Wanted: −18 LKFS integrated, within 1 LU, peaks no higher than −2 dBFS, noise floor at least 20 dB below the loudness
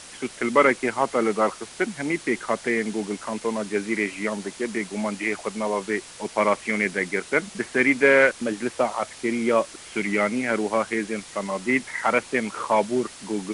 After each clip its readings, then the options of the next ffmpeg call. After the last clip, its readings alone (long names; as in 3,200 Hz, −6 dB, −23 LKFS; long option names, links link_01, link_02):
background noise floor −43 dBFS; target noise floor −44 dBFS; integrated loudness −24.0 LKFS; sample peak −4.5 dBFS; target loudness −18.0 LKFS
→ -af "afftdn=noise_reduction=6:noise_floor=-43"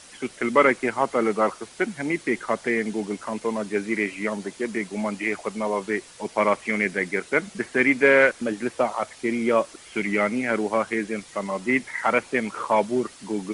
background noise floor −47 dBFS; integrated loudness −24.0 LKFS; sample peak −4.5 dBFS; target loudness −18.0 LKFS
→ -af "volume=6dB,alimiter=limit=-2dB:level=0:latency=1"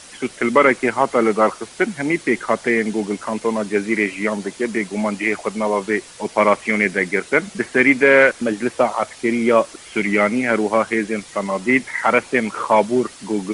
integrated loudness −18.5 LKFS; sample peak −2.0 dBFS; background noise floor −41 dBFS